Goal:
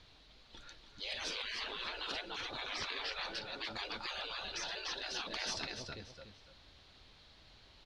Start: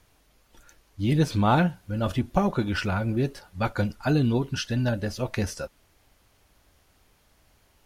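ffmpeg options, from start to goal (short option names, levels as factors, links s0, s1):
-filter_complex "[0:a]lowpass=f=4000:t=q:w=4.6,asplit=2[s0][s1];[s1]aecho=0:1:291|582|873:0.355|0.0993|0.0278[s2];[s0][s2]amix=inputs=2:normalize=0,afftfilt=real='re*lt(hypot(re,im),0.0501)':imag='im*lt(hypot(re,im),0.0501)':win_size=1024:overlap=0.75,volume=0.891"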